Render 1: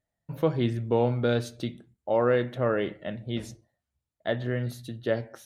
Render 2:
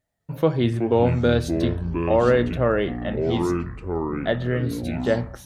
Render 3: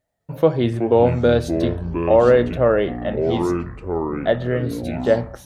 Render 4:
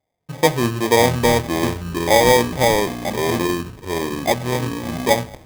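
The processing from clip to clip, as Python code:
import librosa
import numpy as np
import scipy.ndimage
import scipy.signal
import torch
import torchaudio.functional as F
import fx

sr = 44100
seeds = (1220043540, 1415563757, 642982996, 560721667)

y1 = fx.echo_pitch(x, sr, ms=198, semitones=-6, count=3, db_per_echo=-6.0)
y1 = y1 * librosa.db_to_amplitude(5.0)
y2 = fx.peak_eq(y1, sr, hz=590.0, db=6.0, octaves=1.3)
y3 = scipy.signal.sosfilt(scipy.signal.butter(2, 78.0, 'highpass', fs=sr, output='sos'), y2)
y3 = fx.sample_hold(y3, sr, seeds[0], rate_hz=1400.0, jitter_pct=0)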